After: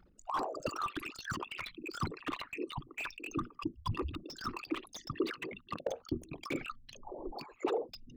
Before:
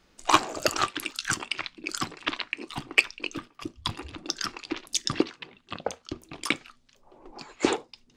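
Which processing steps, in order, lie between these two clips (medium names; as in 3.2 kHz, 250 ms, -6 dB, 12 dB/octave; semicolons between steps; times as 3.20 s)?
resonances exaggerated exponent 3; reverse; compression 6:1, threshold -42 dBFS, peak gain reduction 25.5 dB; reverse; slew-rate limiter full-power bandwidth 12 Hz; trim +9.5 dB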